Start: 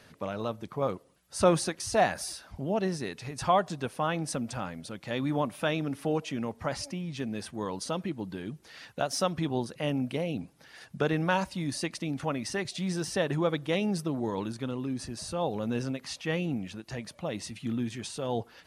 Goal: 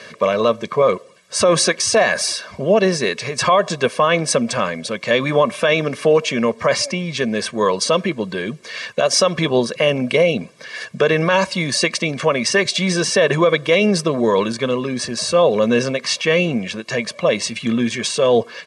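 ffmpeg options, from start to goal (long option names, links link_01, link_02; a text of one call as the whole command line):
ffmpeg -i in.wav -af "highpass=240,equalizer=frequency=240:width_type=q:width=4:gain=8,equalizer=frequency=730:width_type=q:width=4:gain=-4,equalizer=frequency=2200:width_type=q:width=4:gain=5,lowpass=frequency=8500:width=0.5412,lowpass=frequency=8500:width=1.3066,aecho=1:1:1.8:0.79,alimiter=level_in=20dB:limit=-1dB:release=50:level=0:latency=1,volume=-4dB" out.wav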